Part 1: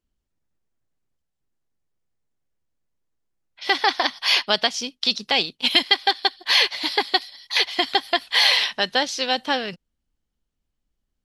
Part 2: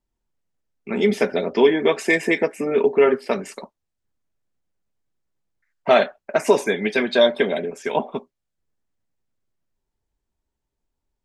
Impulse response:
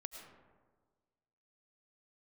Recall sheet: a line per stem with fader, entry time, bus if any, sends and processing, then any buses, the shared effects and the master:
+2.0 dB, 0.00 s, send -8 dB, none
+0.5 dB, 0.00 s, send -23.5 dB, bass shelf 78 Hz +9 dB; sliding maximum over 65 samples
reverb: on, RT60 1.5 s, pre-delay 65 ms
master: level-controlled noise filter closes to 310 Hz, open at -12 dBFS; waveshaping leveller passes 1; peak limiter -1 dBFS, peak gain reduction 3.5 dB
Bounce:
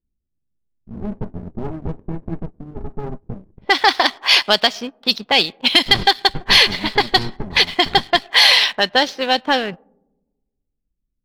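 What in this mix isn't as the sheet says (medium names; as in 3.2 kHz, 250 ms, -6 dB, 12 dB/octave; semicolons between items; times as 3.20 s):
stem 1: send -8 dB -> -15 dB; stem 2 +0.5 dB -> -9.0 dB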